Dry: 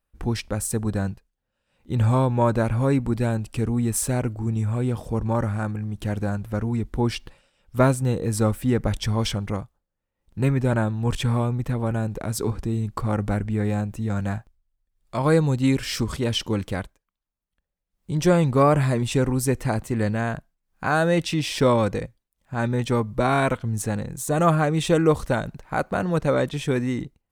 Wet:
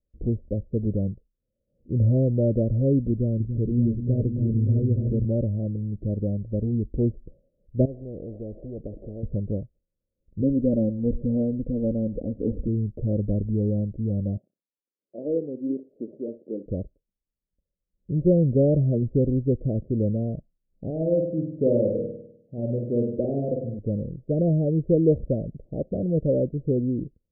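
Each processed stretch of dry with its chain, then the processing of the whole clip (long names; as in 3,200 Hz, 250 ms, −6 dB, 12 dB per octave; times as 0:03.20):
0:03.11–0:05.25: parametric band 1,000 Hz −10.5 dB 1.3 octaves + echo whose low-pass opens from repeat to repeat 288 ms, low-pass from 200 Hz, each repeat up 1 octave, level −3 dB
0:07.85–0:09.23: variable-slope delta modulation 64 kbit/s + bass and treble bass −4 dB, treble +6 dB + every bin compressed towards the loudest bin 4 to 1
0:10.41–0:12.68: comb filter 3.9 ms, depth 67% + single-tap delay 113 ms −20.5 dB
0:14.37–0:16.66: high-pass filter 250 Hz 24 dB per octave + flanger 1.3 Hz, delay 1.8 ms, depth 6.2 ms, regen −83% + flutter between parallel walls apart 10.4 metres, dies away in 0.26 s
0:20.90–0:23.79: high-pass filter 270 Hz 6 dB per octave + flutter between parallel walls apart 8.6 metres, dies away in 0.74 s
whole clip: de-essing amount 90%; Butterworth low-pass 600 Hz 72 dB per octave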